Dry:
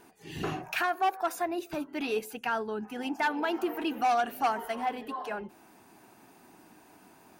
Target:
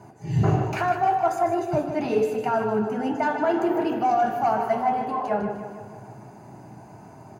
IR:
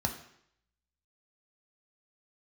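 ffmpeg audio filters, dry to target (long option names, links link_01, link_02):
-filter_complex "[0:a]bass=frequency=250:gain=-4,treble=frequency=4000:gain=-14[link_01];[1:a]atrim=start_sample=2205,asetrate=48510,aresample=44100[link_02];[link_01][link_02]afir=irnorm=-1:irlink=0,asplit=2[link_03][link_04];[link_04]alimiter=limit=-17dB:level=0:latency=1:release=463,volume=-3dB[link_05];[link_03][link_05]amix=inputs=2:normalize=0,highpass=68,areverse,acompressor=threshold=-17dB:ratio=6,areverse,equalizer=frequency=125:width_type=o:width=1:gain=12,equalizer=frequency=250:width_type=o:width=1:gain=-9,equalizer=frequency=500:width_type=o:width=1:gain=7,equalizer=frequency=1000:width_type=o:width=1:gain=-5,equalizer=frequency=2000:width_type=o:width=1:gain=-4,equalizer=frequency=4000:width_type=o:width=1:gain=-4,equalizer=frequency=8000:width_type=o:width=1:gain=9,aecho=1:1:153|306|459|612|765|918|1071:0.355|0.206|0.119|0.0692|0.0402|0.0233|0.0135"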